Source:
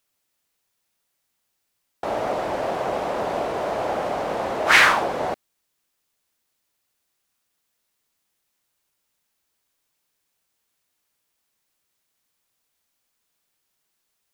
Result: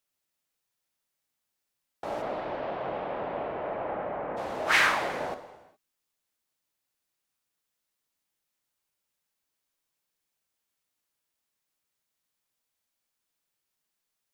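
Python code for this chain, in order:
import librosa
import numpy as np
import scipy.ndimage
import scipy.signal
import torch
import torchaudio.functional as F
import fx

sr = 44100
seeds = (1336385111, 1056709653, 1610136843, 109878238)

y = fx.lowpass(x, sr, hz=fx.line((2.21, 4300.0), (4.36, 2100.0)), slope=24, at=(2.21, 4.36), fade=0.02)
y = fx.rev_gated(y, sr, seeds[0], gate_ms=440, shape='falling', drr_db=8.0)
y = y * 10.0 ** (-8.5 / 20.0)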